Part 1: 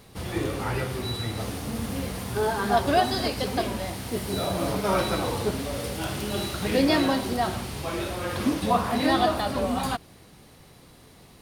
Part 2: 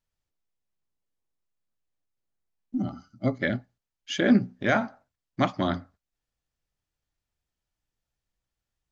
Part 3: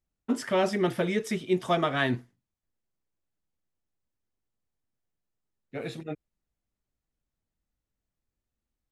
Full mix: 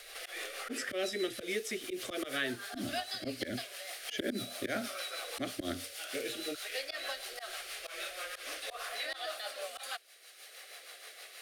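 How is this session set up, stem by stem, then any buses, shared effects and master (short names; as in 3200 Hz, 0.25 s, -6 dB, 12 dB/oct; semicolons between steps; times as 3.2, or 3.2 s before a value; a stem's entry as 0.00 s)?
-4.5 dB, 0.00 s, no send, inverse Chebyshev high-pass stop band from 170 Hz, stop band 70 dB; rotary speaker horn 6.3 Hz
-2.0 dB, 0.00 s, no send, dry
+1.0 dB, 0.40 s, no send, low shelf 350 Hz -10.5 dB; notch 690 Hz, Q 16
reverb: off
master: auto swell 0.115 s; fixed phaser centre 390 Hz, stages 4; three-band squash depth 70%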